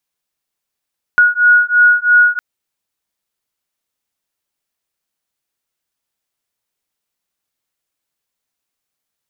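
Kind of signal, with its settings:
two tones that beat 1,450 Hz, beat 3 Hz, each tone −10.5 dBFS 1.21 s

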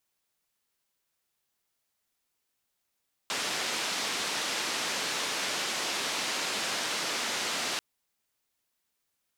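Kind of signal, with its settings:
band-limited noise 230–5,400 Hz, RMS −32 dBFS 4.49 s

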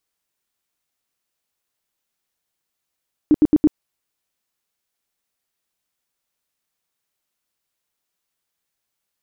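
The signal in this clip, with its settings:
tone bursts 303 Hz, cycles 10, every 0.11 s, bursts 4, −8.5 dBFS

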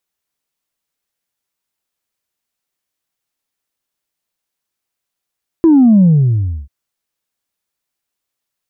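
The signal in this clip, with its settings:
bass drop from 340 Hz, over 1.04 s, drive 0 dB, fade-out 0.66 s, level −5 dB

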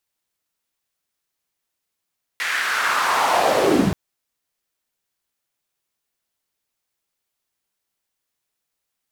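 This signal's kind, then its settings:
filter sweep on noise white, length 1.53 s bandpass, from 1,900 Hz, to 110 Hz, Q 2.9, linear, gain ramp +17 dB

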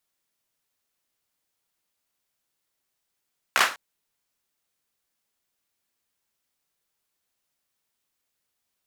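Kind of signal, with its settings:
synth clap length 0.20 s, bursts 4, apart 15 ms, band 1,400 Hz, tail 0.31 s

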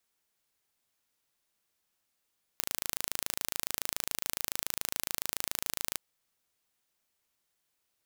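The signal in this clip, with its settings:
impulse train 27.1 per second, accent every 0, −4.5 dBFS 3.36 s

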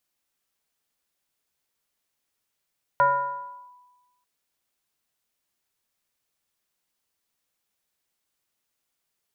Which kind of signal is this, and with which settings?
two-operator FM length 1.24 s, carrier 989 Hz, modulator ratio 0.43, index 0.83, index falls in 0.73 s linear, decay 1.25 s, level −14 dB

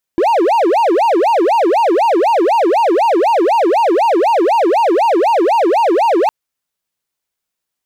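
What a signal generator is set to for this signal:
siren wail 326–944 Hz 4 per second triangle −7 dBFS 6.11 s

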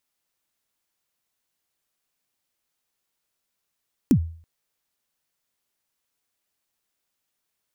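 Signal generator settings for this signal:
synth kick length 0.33 s, from 310 Hz, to 82 Hz, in 79 ms, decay 0.47 s, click on, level −10 dB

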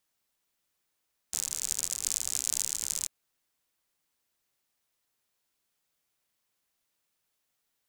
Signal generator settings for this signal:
rain-like ticks over hiss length 1.74 s, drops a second 72, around 7,200 Hz, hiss −20.5 dB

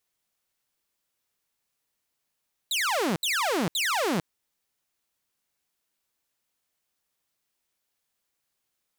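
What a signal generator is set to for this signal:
repeated falling chirps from 4,100 Hz, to 150 Hz, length 0.45 s saw, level −21 dB, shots 3, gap 0.07 s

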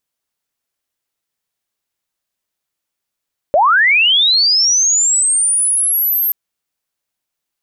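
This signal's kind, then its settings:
glide linear 540 Hz → 13,000 Hz −7.5 dBFS → −12.5 dBFS 2.78 s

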